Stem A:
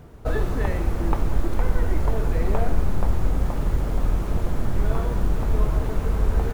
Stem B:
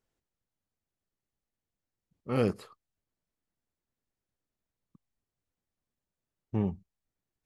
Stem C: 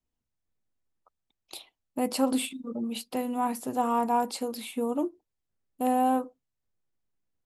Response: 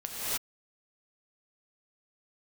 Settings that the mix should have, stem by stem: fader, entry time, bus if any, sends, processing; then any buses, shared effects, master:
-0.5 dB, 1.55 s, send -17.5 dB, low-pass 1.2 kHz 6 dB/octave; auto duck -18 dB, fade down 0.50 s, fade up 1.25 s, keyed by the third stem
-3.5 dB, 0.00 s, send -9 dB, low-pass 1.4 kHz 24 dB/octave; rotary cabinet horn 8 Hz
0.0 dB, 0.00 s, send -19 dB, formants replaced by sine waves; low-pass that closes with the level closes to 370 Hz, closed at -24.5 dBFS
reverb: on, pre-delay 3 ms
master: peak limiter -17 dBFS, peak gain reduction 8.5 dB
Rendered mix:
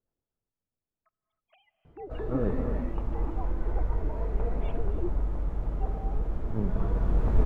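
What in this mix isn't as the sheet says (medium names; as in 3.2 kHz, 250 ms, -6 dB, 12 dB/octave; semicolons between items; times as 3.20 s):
stem A: entry 1.55 s -> 1.85 s; stem C 0.0 dB -> -10.5 dB; master: missing peak limiter -17 dBFS, peak gain reduction 8.5 dB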